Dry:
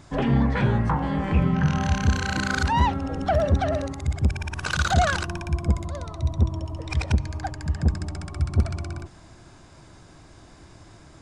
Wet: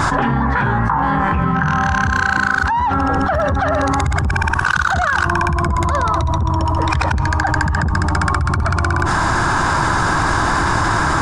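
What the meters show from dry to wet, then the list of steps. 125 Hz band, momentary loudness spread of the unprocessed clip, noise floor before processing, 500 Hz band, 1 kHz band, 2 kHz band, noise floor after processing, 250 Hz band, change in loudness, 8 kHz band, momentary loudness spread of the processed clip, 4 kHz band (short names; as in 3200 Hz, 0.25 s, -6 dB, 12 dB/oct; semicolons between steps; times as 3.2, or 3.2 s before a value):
+5.5 dB, 10 LU, -49 dBFS, +6.5 dB, +13.5 dB, +14.5 dB, -19 dBFS, +6.0 dB, +8.0 dB, +9.0 dB, 2 LU, +6.5 dB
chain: band shelf 1200 Hz +12.5 dB 1.3 oct; fast leveller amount 100%; gain -7 dB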